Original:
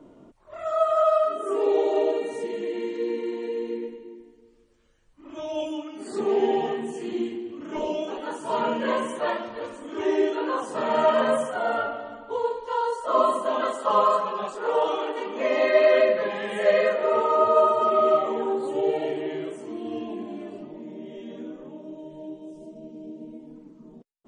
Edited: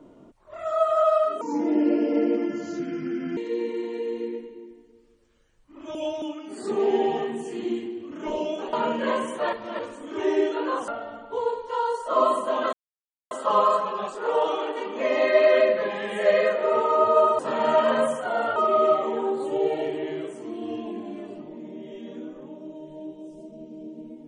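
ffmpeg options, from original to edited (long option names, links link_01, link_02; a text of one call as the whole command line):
ffmpeg -i in.wav -filter_complex "[0:a]asplit=12[link_01][link_02][link_03][link_04][link_05][link_06][link_07][link_08][link_09][link_10][link_11][link_12];[link_01]atrim=end=1.414[link_13];[link_02]atrim=start=1.41:end=2.86,asetpts=PTS-STARTPTS,asetrate=32634,aresample=44100,atrim=end_sample=86412,asetpts=PTS-STARTPTS[link_14];[link_03]atrim=start=2.856:end=5.442[link_15];[link_04]atrim=start=5.438:end=5.712,asetpts=PTS-STARTPTS,areverse[link_16];[link_05]atrim=start=5.708:end=8.222[link_17];[link_06]atrim=start=8.538:end=9.342[link_18];[link_07]atrim=start=9.338:end=9.602,asetpts=PTS-STARTPTS,areverse[link_19];[link_08]atrim=start=9.598:end=10.692[link_20];[link_09]atrim=start=11.858:end=13.71,asetpts=PTS-STARTPTS,afade=type=out:start_time=1.848:duration=0.004:curve=hsin,apad=pad_dur=0.58[link_21];[link_10]atrim=start=13.71:end=17.792,asetpts=PTS-STARTPTS,afade=type=in:duration=0.004:curve=hsin[link_22];[link_11]atrim=start=10.688:end=11.862[link_23];[link_12]atrim=start=17.788[link_24];[link_13][link_14]acrossfade=duration=0.004:curve1=hsin:curve2=hsin[link_25];[link_25][link_15]acrossfade=duration=0.004:curve1=hsin:curve2=hsin[link_26];[link_26][link_16]acrossfade=duration=0.004:curve1=hsin:curve2=hsin[link_27];[link_27][link_17]acrossfade=duration=0.004:curve1=hsin:curve2=hsin[link_28];[link_28][link_18]acrossfade=duration=0.004:curve1=hsin:curve2=hsin[link_29];[link_29][link_19]acrossfade=duration=0.004:curve1=hsin:curve2=hsin[link_30];[link_30][link_20]acrossfade=duration=0.004:curve1=hsin:curve2=hsin[link_31];[link_21][link_22]concat=n=2:v=0:a=1[link_32];[link_31][link_32]acrossfade=duration=0.004:curve1=hsin:curve2=hsin[link_33];[link_33][link_23]acrossfade=duration=0.004:curve1=hsin:curve2=hsin[link_34];[link_34][link_24]acrossfade=duration=0.004:curve1=hsin:curve2=hsin" out.wav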